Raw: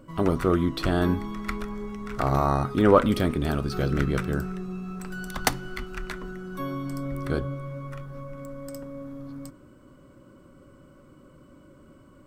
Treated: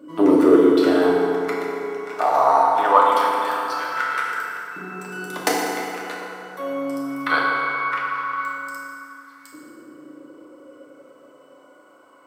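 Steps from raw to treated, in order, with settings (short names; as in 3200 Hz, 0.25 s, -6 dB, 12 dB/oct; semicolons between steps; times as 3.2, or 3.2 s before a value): LFO high-pass saw up 0.21 Hz 310–1700 Hz; 7.26–8.53 band shelf 2100 Hz +14 dB 2.6 oct; FDN reverb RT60 2.9 s, high-frequency decay 0.55×, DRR -5 dB; gain -1 dB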